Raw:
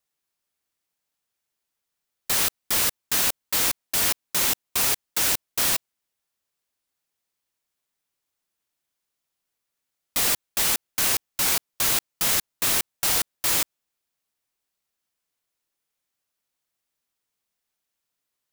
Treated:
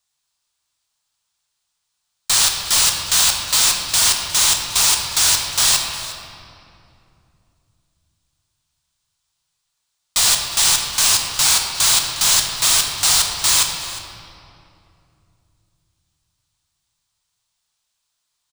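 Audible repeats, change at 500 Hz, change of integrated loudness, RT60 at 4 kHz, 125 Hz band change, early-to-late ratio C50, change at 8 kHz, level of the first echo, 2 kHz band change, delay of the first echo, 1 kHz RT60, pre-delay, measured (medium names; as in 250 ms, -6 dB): 1, +0.5 dB, +7.5 dB, 1.7 s, +6.0 dB, 3.5 dB, +10.5 dB, -17.5 dB, +6.0 dB, 358 ms, 2.4 s, 12 ms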